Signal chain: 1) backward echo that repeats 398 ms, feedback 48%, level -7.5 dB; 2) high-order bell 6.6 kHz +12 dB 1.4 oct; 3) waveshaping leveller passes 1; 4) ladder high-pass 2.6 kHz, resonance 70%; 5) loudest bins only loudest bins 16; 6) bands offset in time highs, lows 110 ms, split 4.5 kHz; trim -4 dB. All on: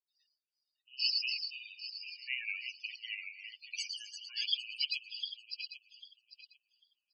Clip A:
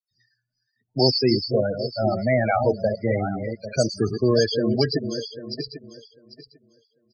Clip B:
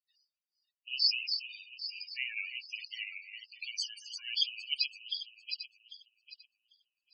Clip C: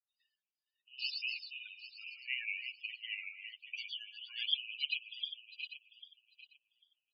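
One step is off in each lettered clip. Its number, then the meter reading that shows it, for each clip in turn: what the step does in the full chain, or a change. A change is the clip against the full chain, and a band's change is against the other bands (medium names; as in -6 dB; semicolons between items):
4, crest factor change -3.5 dB; 6, echo-to-direct 26.5 dB to none; 2, loudness change -3.0 LU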